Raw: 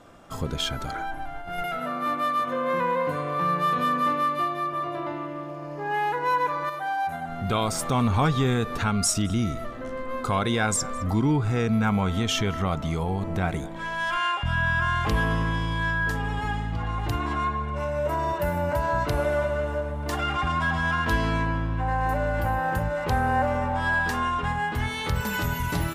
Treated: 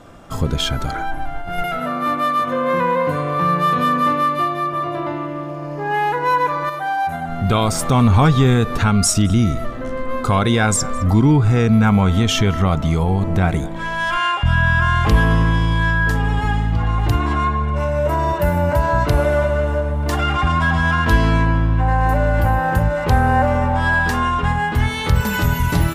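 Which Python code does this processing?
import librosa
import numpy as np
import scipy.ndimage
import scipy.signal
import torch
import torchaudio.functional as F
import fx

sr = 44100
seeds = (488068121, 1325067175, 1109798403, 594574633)

y = fx.low_shelf(x, sr, hz=190.0, db=6.0)
y = y * librosa.db_to_amplitude(6.5)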